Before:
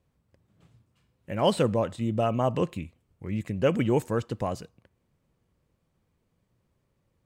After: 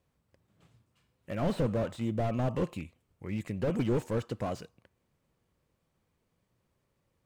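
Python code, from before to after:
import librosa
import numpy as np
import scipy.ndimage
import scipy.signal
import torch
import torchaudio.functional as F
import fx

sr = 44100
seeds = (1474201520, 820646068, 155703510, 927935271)

y = fx.low_shelf(x, sr, hz=350.0, db=-5.5)
y = fx.slew_limit(y, sr, full_power_hz=21.0)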